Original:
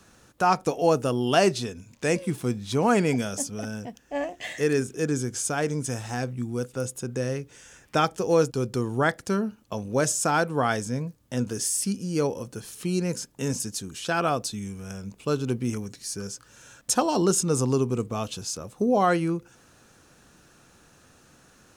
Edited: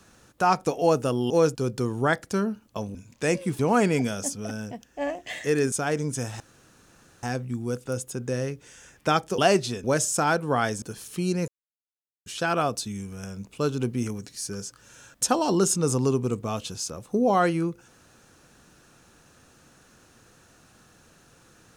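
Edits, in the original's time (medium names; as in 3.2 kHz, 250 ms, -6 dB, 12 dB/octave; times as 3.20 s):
1.30–1.76 s: swap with 8.26–9.91 s
2.40–2.73 s: delete
4.86–5.43 s: delete
6.11 s: insert room tone 0.83 s
10.89–12.49 s: delete
13.15–13.93 s: mute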